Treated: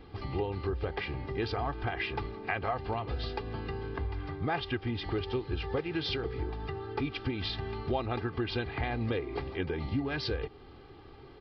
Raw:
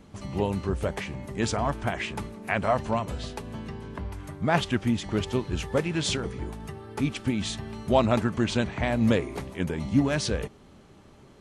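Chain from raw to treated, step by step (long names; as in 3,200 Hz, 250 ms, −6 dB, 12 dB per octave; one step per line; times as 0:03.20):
comb filter 2.5 ms, depth 70%
downward compressor 4 to 1, threshold −30 dBFS, peak gain reduction 13 dB
downsampling to 11,025 Hz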